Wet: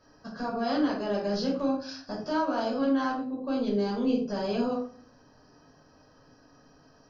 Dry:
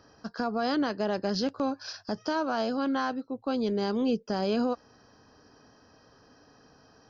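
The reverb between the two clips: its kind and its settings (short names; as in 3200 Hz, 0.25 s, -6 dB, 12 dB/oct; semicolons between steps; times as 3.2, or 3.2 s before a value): shoebox room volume 350 m³, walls furnished, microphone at 5.6 m; gain -10 dB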